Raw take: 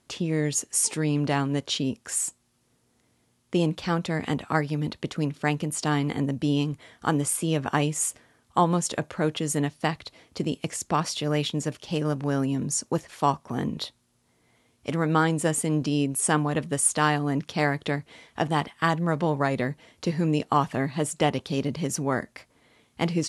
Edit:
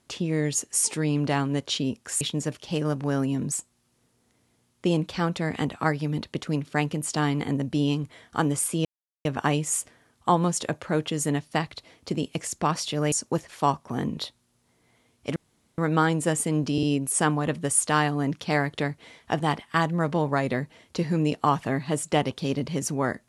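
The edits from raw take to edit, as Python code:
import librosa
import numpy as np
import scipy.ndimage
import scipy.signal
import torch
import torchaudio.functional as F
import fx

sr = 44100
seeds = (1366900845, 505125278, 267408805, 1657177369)

y = fx.edit(x, sr, fx.insert_silence(at_s=7.54, length_s=0.4),
    fx.move(start_s=11.41, length_s=1.31, to_s=2.21),
    fx.insert_room_tone(at_s=14.96, length_s=0.42),
    fx.stutter(start_s=15.91, slice_s=0.05, count=3), tone=tone)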